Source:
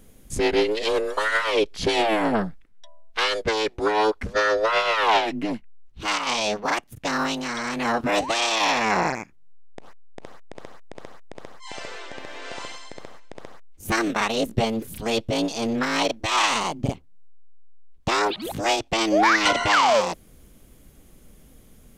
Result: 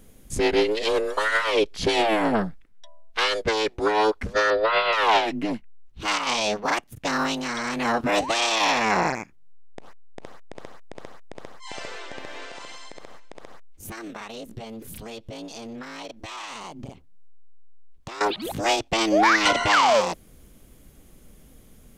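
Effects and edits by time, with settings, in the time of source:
0:04.50–0:04.93: Butterworth low-pass 4,800 Hz 96 dB per octave
0:12.44–0:18.21: downward compressor, threshold −34 dBFS

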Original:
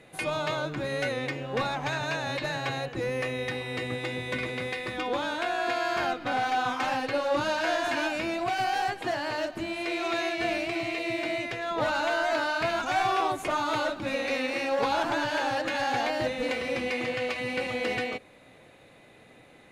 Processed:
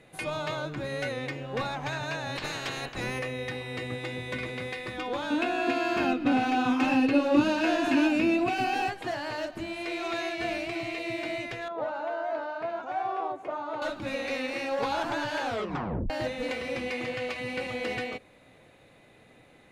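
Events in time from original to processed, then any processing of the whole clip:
0:02.35–0:03.18: ceiling on every frequency bin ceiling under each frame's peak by 18 dB
0:05.30–0:08.89: hollow resonant body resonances 270/2,600 Hz, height 17 dB, ringing for 35 ms
0:11.68–0:13.82: resonant band-pass 590 Hz, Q 1.1
0:15.44: tape stop 0.66 s
whole clip: low-shelf EQ 130 Hz +4.5 dB; level −3 dB

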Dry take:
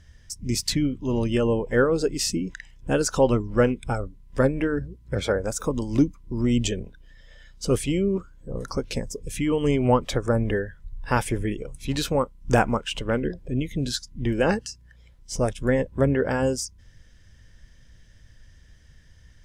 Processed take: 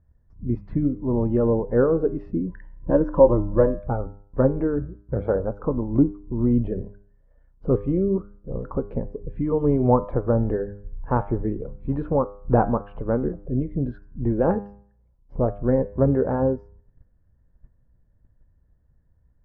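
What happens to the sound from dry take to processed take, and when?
0:02.47–0:03.79: EQ curve with evenly spaced ripples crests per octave 1.2, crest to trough 12 dB
whole clip: noise gate −45 dBFS, range −11 dB; low-pass filter 1,100 Hz 24 dB per octave; hum removal 101.2 Hz, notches 27; level +2 dB

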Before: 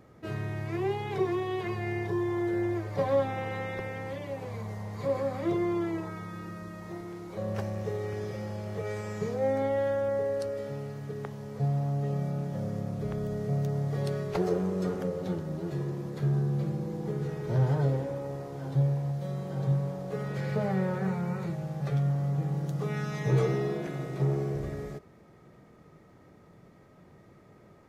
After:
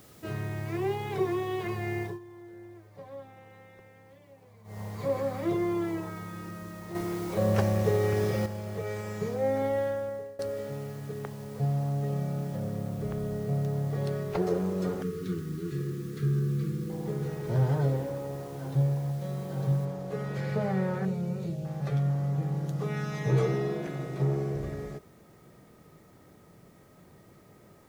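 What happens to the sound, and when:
0:02.02–0:04.81: duck −18 dB, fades 0.17 s
0:06.95–0:08.46: clip gain +8 dB
0:09.76–0:10.39: fade out, to −21 dB
0:12.56–0:14.47: high-shelf EQ 4,300 Hz −7 dB
0:15.02–0:16.90: linear-phase brick-wall band-stop 490–1,100 Hz
0:19.85: noise floor change −58 dB −69 dB
0:21.05–0:21.65: flat-topped bell 1,300 Hz −12.5 dB

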